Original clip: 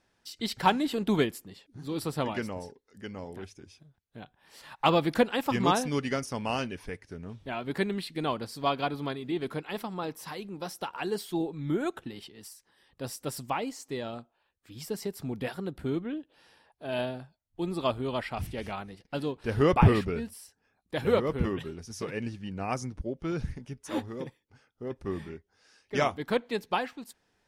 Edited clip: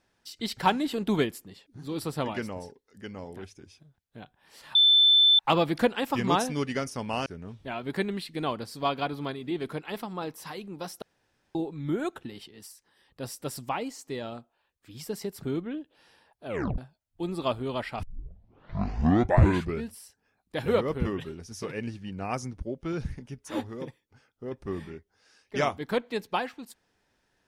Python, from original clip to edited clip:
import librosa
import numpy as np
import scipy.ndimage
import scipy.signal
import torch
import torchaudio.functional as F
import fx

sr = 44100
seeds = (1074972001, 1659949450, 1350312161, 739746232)

y = fx.edit(x, sr, fx.insert_tone(at_s=4.75, length_s=0.64, hz=3530.0, db=-15.5),
    fx.cut(start_s=6.62, length_s=0.45),
    fx.room_tone_fill(start_s=10.83, length_s=0.53),
    fx.cut(start_s=15.24, length_s=0.58),
    fx.tape_stop(start_s=16.86, length_s=0.31),
    fx.tape_start(start_s=18.42, length_s=1.8), tone=tone)